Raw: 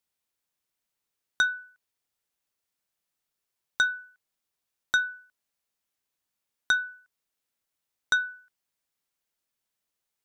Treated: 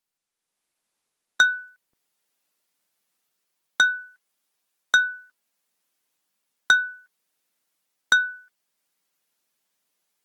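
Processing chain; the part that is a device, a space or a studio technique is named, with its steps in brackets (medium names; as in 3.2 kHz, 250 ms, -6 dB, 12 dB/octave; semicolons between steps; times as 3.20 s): 3.85–5.01 s: bass shelf 190 Hz -5.5 dB; video call (high-pass 150 Hz 24 dB/octave; level rider gain up to 9 dB; trim -1 dB; Opus 20 kbps 48 kHz)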